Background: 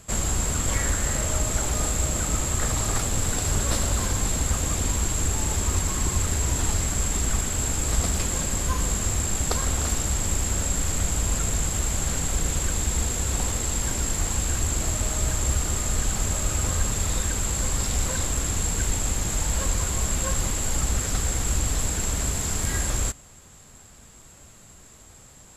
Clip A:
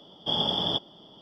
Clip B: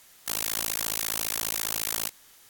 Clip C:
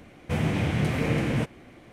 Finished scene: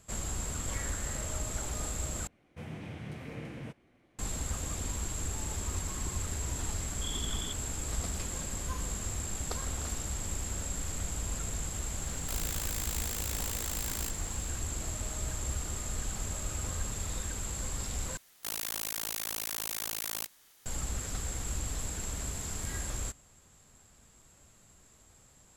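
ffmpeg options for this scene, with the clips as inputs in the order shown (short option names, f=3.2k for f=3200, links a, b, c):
-filter_complex "[2:a]asplit=2[a][b];[0:a]volume=-11dB[c];[1:a]asuperstop=centerf=650:order=20:qfactor=1.2[d];[c]asplit=3[e][f][g];[e]atrim=end=2.274[h];[3:a]atrim=end=1.92,asetpts=PTS-STARTPTS,volume=-17dB[i];[f]atrim=start=4.186:end=18.174[j];[b]atrim=end=2.49,asetpts=PTS-STARTPTS,volume=-6.5dB[k];[g]atrim=start=20.656[l];[d]atrim=end=1.21,asetpts=PTS-STARTPTS,volume=-14dB,afade=t=in:d=0.004:c=hsin,afade=t=out:st=1.206:d=0.004:c=hsin,adelay=6750[m];[a]atrim=end=2.49,asetpts=PTS-STARTPTS,volume=-9.5dB,afade=t=in:d=0.004:c=hsin,afade=t=out:st=2.486:d=0.004:c=hsin,adelay=12010[n];[h][i]acrossfade=d=0.004:c1=hsin:c2=hsin[o];[o][j]acrossfade=d=0.004:c1=hsin:c2=hsin[p];[p][k]acrossfade=d=0.004:c1=hsin:c2=hsin[q];[q][l]acrossfade=d=0.004:c1=hsin:c2=hsin[r];[r][m][n]amix=inputs=3:normalize=0"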